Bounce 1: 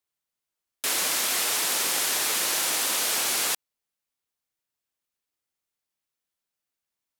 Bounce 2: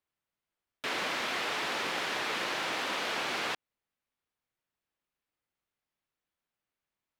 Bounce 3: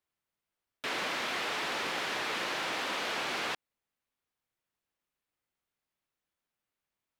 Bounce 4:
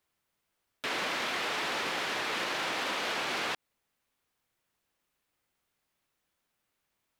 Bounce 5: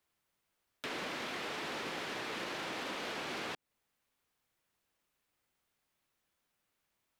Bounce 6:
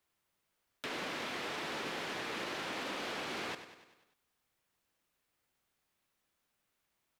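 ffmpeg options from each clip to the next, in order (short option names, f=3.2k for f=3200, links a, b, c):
-filter_complex "[0:a]acrossover=split=5800[a][b];[b]acompressor=threshold=-43dB:ratio=4:attack=1:release=60[c];[a][c]amix=inputs=2:normalize=0,bass=f=250:g=2,treble=f=4k:g=-13,asplit=2[d][e];[e]alimiter=level_in=7.5dB:limit=-24dB:level=0:latency=1:release=123,volume=-7.5dB,volume=-1dB[f];[d][f]amix=inputs=2:normalize=0,volume=-3.5dB"
-af "asoftclip=type=tanh:threshold=-24dB"
-af "alimiter=level_in=9.5dB:limit=-24dB:level=0:latency=1:release=79,volume=-9.5dB,volume=8dB"
-filter_complex "[0:a]acrossover=split=460[a][b];[b]acompressor=threshold=-43dB:ratio=2[c];[a][c]amix=inputs=2:normalize=0,volume=-1.5dB"
-af "aecho=1:1:98|196|294|392|490|588:0.266|0.149|0.0834|0.0467|0.0262|0.0147"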